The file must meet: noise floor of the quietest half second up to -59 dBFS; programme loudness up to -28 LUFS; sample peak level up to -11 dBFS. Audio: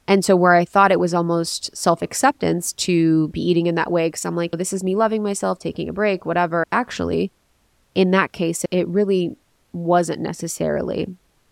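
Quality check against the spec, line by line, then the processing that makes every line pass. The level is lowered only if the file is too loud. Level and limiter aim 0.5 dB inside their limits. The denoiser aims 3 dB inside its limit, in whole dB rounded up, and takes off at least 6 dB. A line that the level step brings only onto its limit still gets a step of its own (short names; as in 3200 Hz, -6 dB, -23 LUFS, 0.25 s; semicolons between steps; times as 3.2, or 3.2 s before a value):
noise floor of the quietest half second -62 dBFS: OK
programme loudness -20.0 LUFS: fail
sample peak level -2.5 dBFS: fail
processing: gain -8.5 dB; limiter -11.5 dBFS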